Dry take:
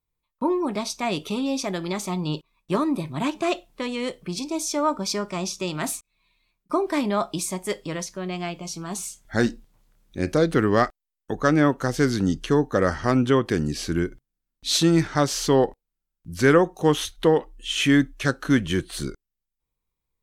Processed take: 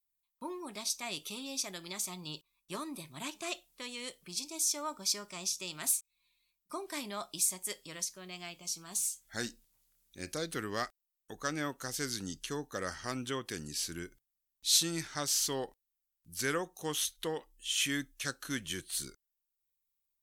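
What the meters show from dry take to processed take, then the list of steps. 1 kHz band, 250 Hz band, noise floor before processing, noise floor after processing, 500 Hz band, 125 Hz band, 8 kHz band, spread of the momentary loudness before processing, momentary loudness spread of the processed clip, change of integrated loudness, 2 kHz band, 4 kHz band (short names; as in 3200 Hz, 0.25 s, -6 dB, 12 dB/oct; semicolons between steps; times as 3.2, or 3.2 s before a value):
-15.5 dB, -19.5 dB, -84 dBFS, under -85 dBFS, -18.5 dB, -20.0 dB, -0.5 dB, 11 LU, 13 LU, -11.5 dB, -11.5 dB, -5.5 dB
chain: pre-emphasis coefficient 0.9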